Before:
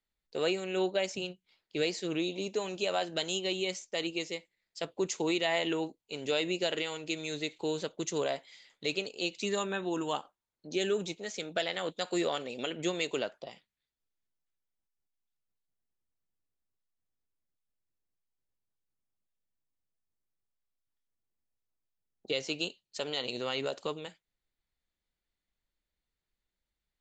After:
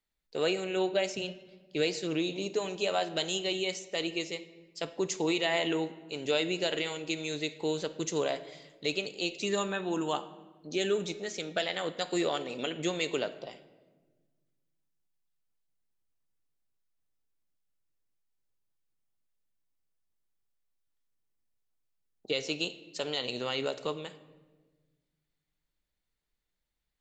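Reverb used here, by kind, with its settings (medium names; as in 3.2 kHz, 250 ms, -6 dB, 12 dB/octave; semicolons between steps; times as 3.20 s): simulated room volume 1000 m³, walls mixed, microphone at 0.41 m; trim +1 dB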